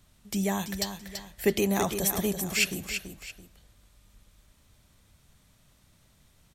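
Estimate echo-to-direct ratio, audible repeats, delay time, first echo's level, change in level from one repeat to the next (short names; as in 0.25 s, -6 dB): -7.5 dB, 2, 0.334 s, -8.0 dB, -9.5 dB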